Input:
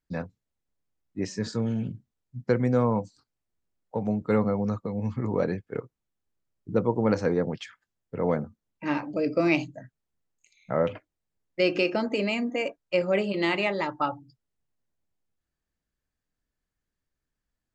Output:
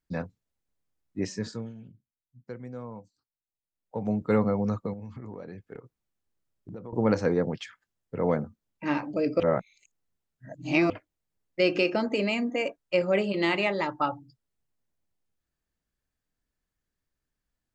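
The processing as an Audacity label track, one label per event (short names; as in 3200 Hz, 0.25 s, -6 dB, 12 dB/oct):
1.280000	4.150000	dip -16.5 dB, fades 0.45 s
4.930000	6.930000	compressor 8:1, threshold -37 dBFS
9.400000	10.900000	reverse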